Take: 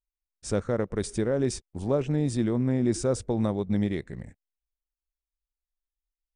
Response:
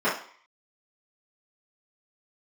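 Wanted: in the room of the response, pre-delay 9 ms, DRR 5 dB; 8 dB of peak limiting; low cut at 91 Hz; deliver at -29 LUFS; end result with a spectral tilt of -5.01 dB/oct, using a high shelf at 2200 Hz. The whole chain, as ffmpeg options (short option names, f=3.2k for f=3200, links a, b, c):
-filter_complex "[0:a]highpass=91,highshelf=f=2.2k:g=8,alimiter=limit=-21.5dB:level=0:latency=1,asplit=2[a][b];[1:a]atrim=start_sample=2205,adelay=9[c];[b][c]afir=irnorm=-1:irlink=0,volume=-21dB[d];[a][d]amix=inputs=2:normalize=0,volume=1dB"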